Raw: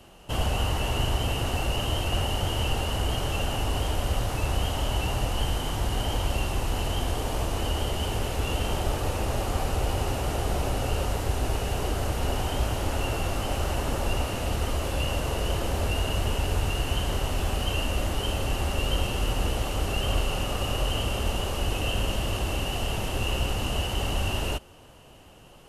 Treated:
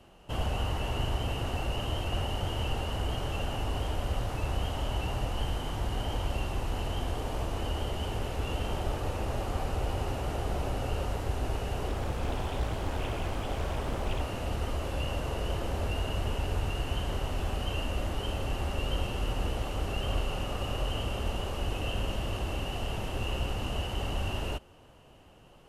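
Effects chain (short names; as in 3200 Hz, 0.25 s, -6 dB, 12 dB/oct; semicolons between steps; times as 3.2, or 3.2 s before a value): high shelf 4200 Hz -8 dB; 11.88–14.21 Doppler distortion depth 0.95 ms; gain -4.5 dB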